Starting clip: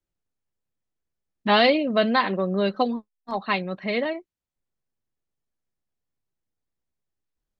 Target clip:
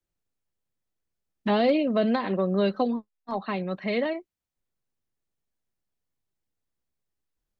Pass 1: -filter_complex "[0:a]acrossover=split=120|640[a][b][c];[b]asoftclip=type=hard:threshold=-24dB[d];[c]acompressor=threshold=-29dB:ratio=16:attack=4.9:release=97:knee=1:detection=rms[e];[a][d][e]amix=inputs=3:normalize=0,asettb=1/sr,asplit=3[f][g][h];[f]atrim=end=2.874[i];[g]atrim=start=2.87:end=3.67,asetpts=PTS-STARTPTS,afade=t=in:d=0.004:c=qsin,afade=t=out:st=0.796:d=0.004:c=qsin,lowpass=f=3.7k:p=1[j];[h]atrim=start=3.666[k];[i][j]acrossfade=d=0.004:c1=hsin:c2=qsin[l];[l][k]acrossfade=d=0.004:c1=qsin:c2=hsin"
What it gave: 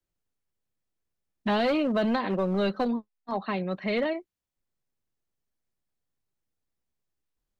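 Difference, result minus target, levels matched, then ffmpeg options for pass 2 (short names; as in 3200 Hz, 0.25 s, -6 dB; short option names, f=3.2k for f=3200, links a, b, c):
hard clip: distortion +26 dB
-filter_complex "[0:a]acrossover=split=120|640[a][b][c];[b]asoftclip=type=hard:threshold=-15.5dB[d];[c]acompressor=threshold=-29dB:ratio=16:attack=4.9:release=97:knee=1:detection=rms[e];[a][d][e]amix=inputs=3:normalize=0,asettb=1/sr,asplit=3[f][g][h];[f]atrim=end=2.874[i];[g]atrim=start=2.87:end=3.67,asetpts=PTS-STARTPTS,afade=t=in:d=0.004:c=qsin,afade=t=out:st=0.796:d=0.004:c=qsin,lowpass=f=3.7k:p=1[j];[h]atrim=start=3.666[k];[i][j]acrossfade=d=0.004:c1=hsin:c2=qsin[l];[l][k]acrossfade=d=0.004:c1=qsin:c2=hsin"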